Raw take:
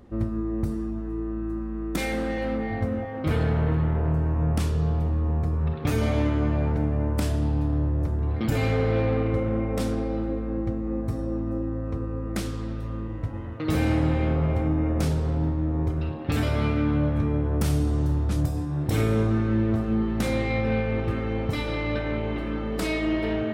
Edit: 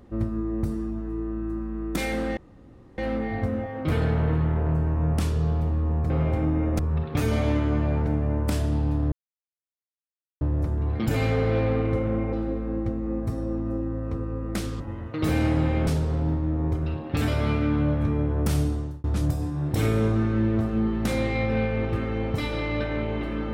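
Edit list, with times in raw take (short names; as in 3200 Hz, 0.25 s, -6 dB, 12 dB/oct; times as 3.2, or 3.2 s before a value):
2.37 insert room tone 0.61 s
7.82 insert silence 1.29 s
9.74–10.14 cut
12.61–13.26 cut
14.33–15.02 move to 5.49
17.76–18.19 fade out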